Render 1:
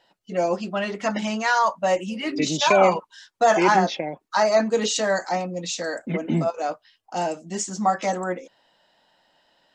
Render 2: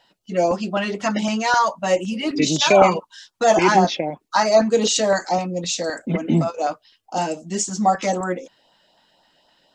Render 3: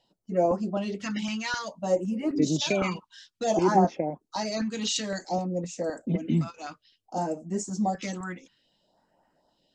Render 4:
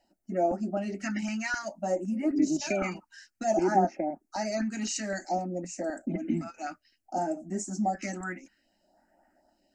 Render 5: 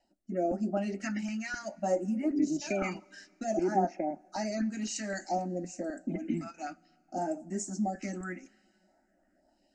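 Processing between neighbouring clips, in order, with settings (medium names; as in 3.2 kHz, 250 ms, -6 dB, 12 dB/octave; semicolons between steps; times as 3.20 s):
peaking EQ 1.8 kHz -2.5 dB; LFO notch saw up 3.9 Hz 340–2500 Hz; trim +5 dB
treble shelf 5.7 kHz -10 dB; phase shifter stages 2, 0.57 Hz, lowest notch 520–3500 Hz; trim -4.5 dB
in parallel at +1 dB: compression, threshold -32 dBFS, peak gain reduction 15.5 dB; on the sum: static phaser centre 700 Hz, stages 8; trim -2.5 dB
rotary cabinet horn 0.9 Hz; resampled via 22.05 kHz; two-slope reverb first 0.23 s, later 2.7 s, from -18 dB, DRR 17.5 dB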